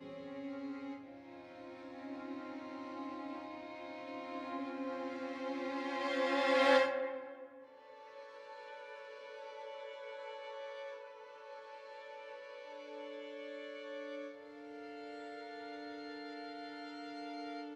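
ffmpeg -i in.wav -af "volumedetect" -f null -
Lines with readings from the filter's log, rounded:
mean_volume: -41.5 dB
max_volume: -17.0 dB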